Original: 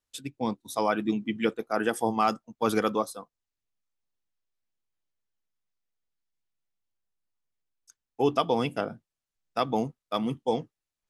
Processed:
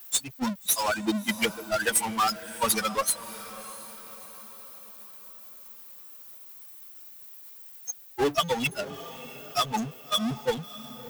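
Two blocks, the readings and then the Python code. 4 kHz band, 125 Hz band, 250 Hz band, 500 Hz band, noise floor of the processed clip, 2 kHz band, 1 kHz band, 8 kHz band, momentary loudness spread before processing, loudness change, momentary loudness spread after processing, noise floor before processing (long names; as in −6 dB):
+9.5 dB, −1.0 dB, −2.0 dB, −2.5 dB, −48 dBFS, +5.5 dB, 0.0 dB, +16.5 dB, 8 LU, +1.0 dB, 18 LU, below −85 dBFS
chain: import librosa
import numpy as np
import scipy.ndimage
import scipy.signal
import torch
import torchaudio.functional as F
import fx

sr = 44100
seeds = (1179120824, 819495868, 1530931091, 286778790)

p1 = fx.bin_expand(x, sr, power=3.0)
p2 = scipy.signal.sosfilt(scipy.signal.butter(2, 90.0, 'highpass', fs=sr, output='sos'), p1)
p3 = librosa.effects.preemphasis(p2, coef=0.9, zi=[0.0])
p4 = fx.transient(p3, sr, attack_db=12, sustain_db=-8)
p5 = fx.power_curve(p4, sr, exponent=0.35)
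p6 = p5 + fx.echo_diffused(p5, sr, ms=650, feedback_pct=47, wet_db=-15, dry=0)
y = p6 * 10.0 ** (2.0 / 20.0)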